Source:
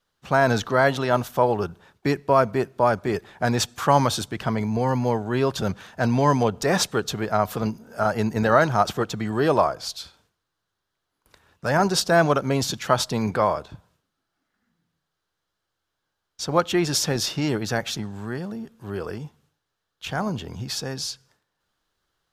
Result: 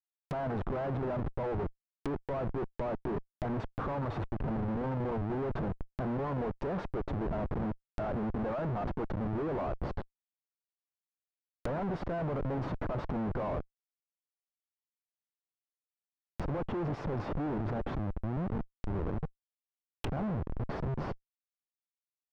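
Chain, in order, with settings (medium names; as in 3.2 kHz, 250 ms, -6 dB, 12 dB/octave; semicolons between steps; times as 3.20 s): Schmitt trigger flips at -29 dBFS; low-pass that closes with the level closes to 1.1 kHz, closed at -26.5 dBFS; trim -7.5 dB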